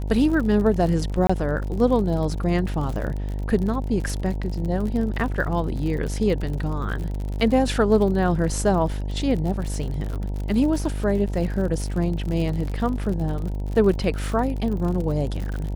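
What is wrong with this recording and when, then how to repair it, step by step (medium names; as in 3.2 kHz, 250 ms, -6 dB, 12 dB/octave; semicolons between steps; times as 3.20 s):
buzz 50 Hz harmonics 19 -27 dBFS
crackle 55 per s -29 dBFS
1.27–1.29 s: dropout 25 ms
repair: de-click; de-hum 50 Hz, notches 19; interpolate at 1.27 s, 25 ms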